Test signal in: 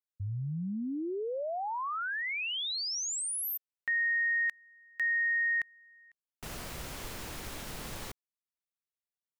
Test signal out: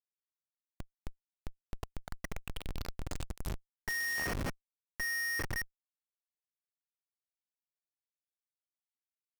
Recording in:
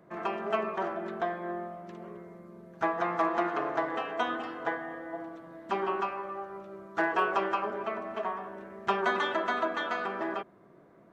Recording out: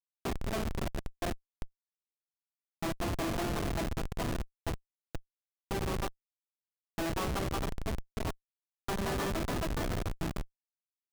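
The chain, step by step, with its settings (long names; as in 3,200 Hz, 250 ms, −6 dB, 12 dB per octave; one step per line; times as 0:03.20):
coupled-rooms reverb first 0.33 s, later 4.4 s, from −19 dB, DRR 5.5 dB
comparator with hysteresis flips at −26.5 dBFS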